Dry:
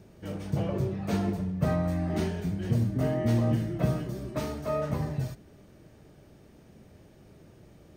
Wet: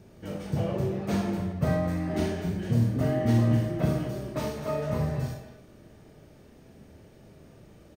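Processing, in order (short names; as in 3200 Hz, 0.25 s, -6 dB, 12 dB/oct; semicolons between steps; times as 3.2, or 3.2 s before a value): speakerphone echo 0.22 s, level -9 dB; Schroeder reverb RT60 0.5 s, combs from 26 ms, DRR 3 dB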